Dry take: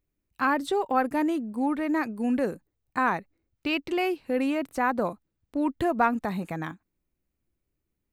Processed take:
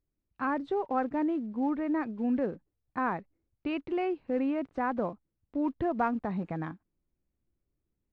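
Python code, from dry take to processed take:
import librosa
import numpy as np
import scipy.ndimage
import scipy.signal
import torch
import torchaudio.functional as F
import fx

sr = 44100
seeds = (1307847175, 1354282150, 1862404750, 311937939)

p1 = fx.block_float(x, sr, bits=5)
p2 = fx.rider(p1, sr, range_db=3, speed_s=0.5)
p3 = p1 + F.gain(torch.from_numpy(p2), -2.5).numpy()
p4 = fx.spacing_loss(p3, sr, db_at_10k=40)
y = F.gain(torch.from_numpy(p4), -6.5).numpy()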